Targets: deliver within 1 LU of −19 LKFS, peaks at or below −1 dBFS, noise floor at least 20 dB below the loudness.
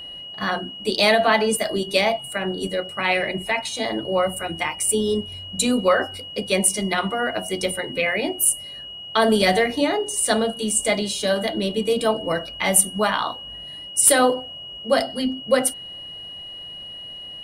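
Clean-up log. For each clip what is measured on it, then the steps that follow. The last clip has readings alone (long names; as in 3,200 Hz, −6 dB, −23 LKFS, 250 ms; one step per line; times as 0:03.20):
interfering tone 2,900 Hz; level of the tone −34 dBFS; integrated loudness −21.0 LKFS; sample peak −5.0 dBFS; target loudness −19.0 LKFS
→ notch filter 2,900 Hz, Q 30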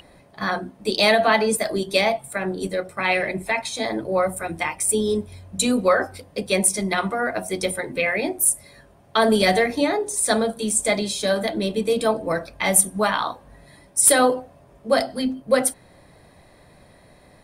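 interfering tone none found; integrated loudness −21.5 LKFS; sample peak −5.0 dBFS; target loudness −19.0 LKFS
→ level +2.5 dB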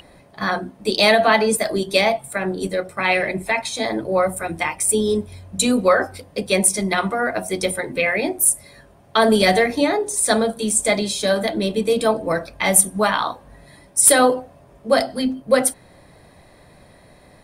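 integrated loudness −19.0 LKFS; sample peak −2.5 dBFS; background noise floor −50 dBFS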